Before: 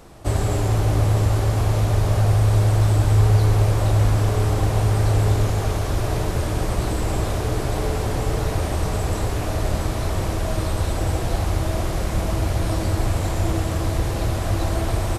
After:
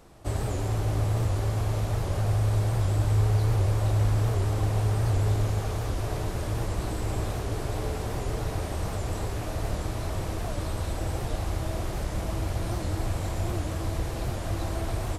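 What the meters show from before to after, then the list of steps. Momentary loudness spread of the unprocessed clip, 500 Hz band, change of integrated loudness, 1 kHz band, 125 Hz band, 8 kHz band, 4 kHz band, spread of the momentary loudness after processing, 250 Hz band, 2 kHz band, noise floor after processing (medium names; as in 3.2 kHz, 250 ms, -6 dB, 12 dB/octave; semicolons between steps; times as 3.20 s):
7 LU, -7.5 dB, -7.0 dB, -7.5 dB, -7.0 dB, -7.5 dB, -8.0 dB, 7 LU, -7.5 dB, -8.0 dB, -33 dBFS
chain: echo that smears into a reverb 635 ms, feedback 75%, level -15.5 dB; warped record 78 rpm, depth 160 cents; trim -8 dB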